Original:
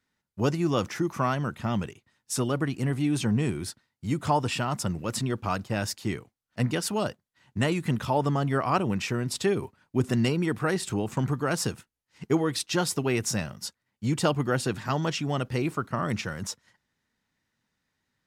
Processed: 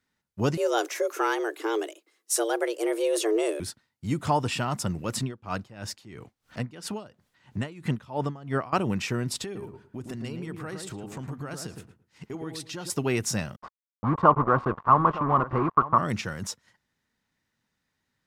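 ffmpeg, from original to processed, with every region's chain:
-filter_complex "[0:a]asettb=1/sr,asplit=3[s0][s1][s2];[s0]atrim=end=0.574[s3];[s1]atrim=start=0.57:end=3.6,asetpts=PTS-STARTPTS,afade=t=in:d=0.004:c=qsin,afade=t=out:st=3.026:d=0.004:c=qsin,highshelf=f=6600:g=9,afreqshift=220[s4];[s2]atrim=start=3.596[s5];[s3][s4]acrossfade=d=0.004:c1=hsin:c2=qsin[s6];[s6][s5]acrossfade=d=0.004:c1=qsin:c2=hsin,asettb=1/sr,asplit=3[s7][s8][s9];[s7]atrim=end=5.234[s10];[s8]atrim=start=5.23:end=8.73,asetpts=PTS-STARTPTS,afade=t=in:d=0.004:c=qsin,afade=t=out:st=3.496:d=0.004:c=qsin,acompressor=mode=upward:threshold=0.0355:ratio=2.5:attack=3.2:release=140:knee=2.83:detection=peak,highshelf=f=7500:g=-9,aeval=exprs='val(0)*pow(10,-19*(0.5-0.5*cos(2*PI*3*n/s))/20)':c=same[s11];[s9]atrim=start=8.726[s12];[s10][s11]acrossfade=d=0.004:c1=hsin:c2=qsin[s13];[s13][s12]acrossfade=d=0.004:c1=qsin:c2=hsin,asettb=1/sr,asplit=3[s14][s15][s16];[s14]atrim=end=9.444[s17];[s15]atrim=start=9.44:end=12.9,asetpts=PTS-STARTPTS,afade=t=in:d=0.004:c=qsin,afade=t=out:st=3.456:d=0.004:c=qsin,acompressor=threshold=0.0141:ratio=3:attack=3.2:release=140:knee=1:detection=peak,asplit=2[s18][s19];[s19]adelay=112,lowpass=f=1000:p=1,volume=0.631,asplit=2[s20][s21];[s21]adelay=112,lowpass=f=1000:p=1,volume=0.24,asplit=2[s22][s23];[s23]adelay=112,lowpass=f=1000:p=1,volume=0.24[s24];[s18][s20][s22][s24]amix=inputs=4:normalize=0,atrim=end_sample=152586[s25];[s16]atrim=start=12.896[s26];[s17][s25]acrossfade=d=0.004:c1=hsin:c2=qsin[s27];[s27][s26]acrossfade=d=0.004:c1=qsin:c2=hsin,asettb=1/sr,asplit=3[s28][s29][s30];[s28]atrim=end=13.564[s31];[s29]atrim=start=13.56:end=15.98,asetpts=PTS-STARTPTS,afade=t=in:d=0.004:c=qsin,afade=t=out:st=2.416:d=0.004:c=qsin,acrusher=bits=4:mix=0:aa=0.5,lowpass=f=1100:t=q:w=9,aecho=1:1:912:0.15,atrim=end_sample=106722[s32];[s30]atrim=start=15.976[s33];[s31][s32]acrossfade=d=0.004:c1=hsin:c2=qsin[s34];[s34][s33]acrossfade=d=0.004:c1=qsin:c2=hsin"

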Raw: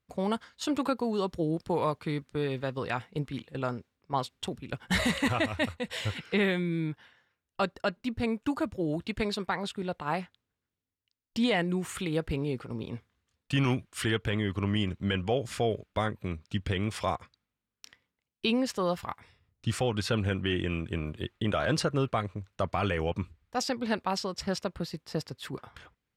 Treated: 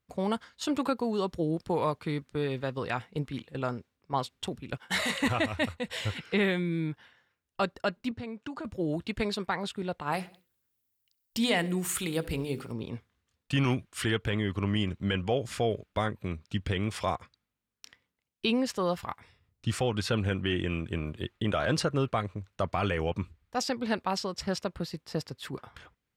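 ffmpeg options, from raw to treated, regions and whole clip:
-filter_complex "[0:a]asettb=1/sr,asplit=3[s0][s1][s2];[s0]atrim=end=4.774[s3];[s1]atrim=start=4.77:end=5.2,asetpts=PTS-STARTPTS,afade=t=in:d=0.004:c=qsin,afade=t=out:st=0.426:d=0.004:c=qsin,highpass=f=560:p=1,asplit=2[s4][s5];[s5]adelay=26,volume=0.376[s6];[s4][s6]amix=inputs=2:normalize=0,atrim=end_sample=18963[s7];[s2]atrim=start=5.196[s8];[s3][s7]acrossfade=d=0.004:c1=hsin:c2=qsin[s9];[s9][s8]acrossfade=d=0.004:c1=qsin:c2=hsin,asettb=1/sr,asplit=3[s10][s11][s12];[s10]atrim=end=8.114[s13];[s11]atrim=start=8.11:end=8.65,asetpts=PTS-STARTPTS,afade=t=in:d=0.004:c=qsin,afade=t=out:st=0.536:d=0.004:c=qsin,highpass=110,lowpass=6400,acompressor=threshold=0.0178:ratio=6:attack=3.2:release=140:knee=1:detection=peak[s14];[s12]atrim=start=8.646[s15];[s13][s14]acrossfade=d=0.004:c1=hsin:c2=qsin[s16];[s16][s15]acrossfade=d=0.004:c1=qsin:c2=hsin,asettb=1/sr,asplit=3[s17][s18][s19];[s17]atrim=end=10.124[s20];[s18]atrim=start=10.12:end=12.72,asetpts=PTS-STARTPTS,afade=t=in:d=0.004:c=qsin,afade=t=out:st=2.596:d=0.004:c=qsin,aemphasis=mode=production:type=50fm,bandreject=f=50:t=h:w=6,bandreject=f=100:t=h:w=6,bandreject=f=150:t=h:w=6,bandreject=f=200:t=h:w=6,bandreject=f=250:t=h:w=6,bandreject=f=300:t=h:w=6,bandreject=f=350:t=h:w=6,bandreject=f=400:t=h:w=6,bandreject=f=450:t=h:w=6,bandreject=f=500:t=h:w=6,aecho=1:1:66|132|198:0.1|0.046|0.0212,atrim=end_sample=114660[s21];[s19]atrim=start=12.716[s22];[s20][s21]acrossfade=d=0.004:c1=hsin:c2=qsin[s23];[s23][s22]acrossfade=d=0.004:c1=qsin:c2=hsin"

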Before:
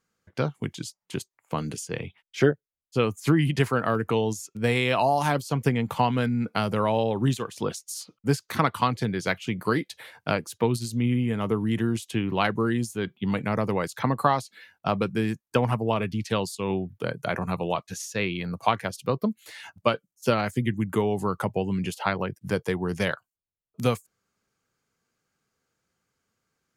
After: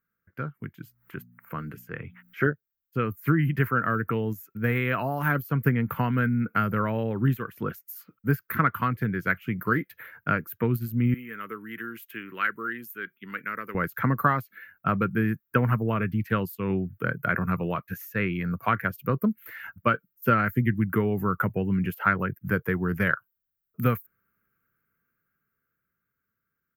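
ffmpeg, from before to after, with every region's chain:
-filter_complex "[0:a]asettb=1/sr,asplit=3[s0][s1][s2];[s0]atrim=end=0.844[s3];[s1]atrim=start=0.84:end=2.47,asetpts=PTS-STARTPTS,afade=t=in:d=0.004:c=qsin,afade=t=out:st=1.626:d=0.004:c=qsin,equalizer=f=1200:t=o:w=1.8:g=4.5,bandreject=f=60:t=h:w=6,bandreject=f=120:t=h:w=6,bandreject=f=180:t=h:w=6,bandreject=f=240:t=h:w=6,acompressor=mode=upward:threshold=0.0251:ratio=2.5:attack=3.2:release=140:knee=2.83:detection=peak[s4];[s2]atrim=start=2.466[s5];[s3][s4]acrossfade=d=0.004:c1=hsin:c2=qsin[s6];[s6][s5]acrossfade=d=0.004:c1=qsin:c2=hsin,asettb=1/sr,asplit=3[s7][s8][s9];[s7]atrim=end=11.144[s10];[s8]atrim=start=11.14:end=13.75,asetpts=PTS-STARTPTS,afade=t=in:d=0.004:c=qsin,afade=t=out:st=2.606:d=0.004:c=qsin,highpass=550,equalizer=f=740:t=o:w=0.95:g=-15[s11];[s9]atrim=start=13.746[s12];[s10][s11]acrossfade=d=0.004:c1=hsin:c2=qsin[s13];[s13][s12]acrossfade=d=0.004:c1=qsin:c2=hsin,firequalizer=gain_entry='entry(160,0);entry(820,-13);entry(1400,6);entry(3700,-21);entry(6100,-23);entry(9400,-20);entry(14000,14)':delay=0.05:min_phase=1,dynaudnorm=f=270:g=17:m=3.76,volume=0.531"

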